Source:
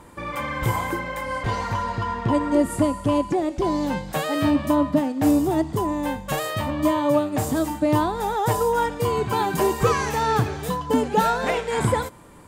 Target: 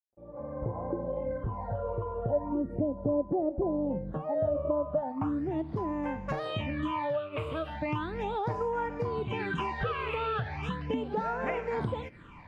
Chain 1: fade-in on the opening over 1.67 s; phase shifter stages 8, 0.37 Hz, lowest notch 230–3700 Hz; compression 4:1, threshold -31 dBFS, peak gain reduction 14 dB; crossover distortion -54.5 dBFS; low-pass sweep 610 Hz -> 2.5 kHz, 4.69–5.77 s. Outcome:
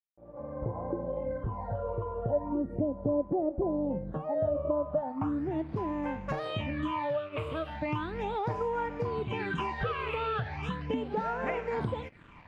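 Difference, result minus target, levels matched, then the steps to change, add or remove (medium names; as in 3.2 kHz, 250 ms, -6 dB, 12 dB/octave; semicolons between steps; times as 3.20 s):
crossover distortion: distortion +10 dB
change: crossover distortion -65 dBFS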